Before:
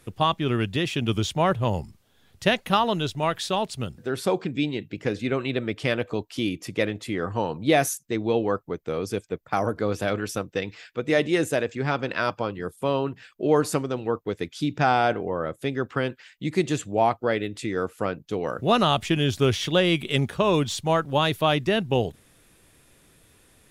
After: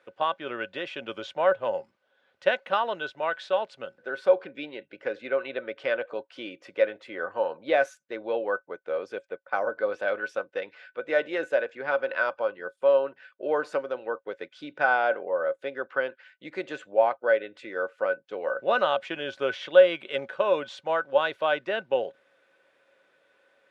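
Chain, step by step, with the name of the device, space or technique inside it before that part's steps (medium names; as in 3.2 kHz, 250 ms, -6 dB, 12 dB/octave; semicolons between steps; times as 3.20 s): tin-can telephone (band-pass 540–2600 Hz; small resonant body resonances 550/1500 Hz, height 16 dB, ringing for 95 ms); trim -3.5 dB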